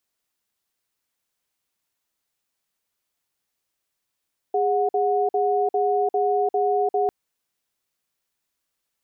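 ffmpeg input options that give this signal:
-f lavfi -i "aevalsrc='0.0891*(sin(2*PI*410*t)+sin(2*PI*732*t))*clip(min(mod(t,0.4),0.35-mod(t,0.4))/0.005,0,1)':d=2.55:s=44100"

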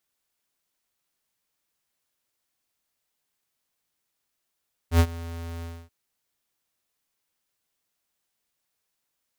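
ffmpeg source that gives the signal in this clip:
-f lavfi -i "aevalsrc='0.178*(2*lt(mod(83.9*t,1),0.5)-1)':d=0.983:s=44100,afade=t=in:d=0.086,afade=t=out:st=0.086:d=0.063:silence=0.1,afade=t=out:st=0.72:d=0.263"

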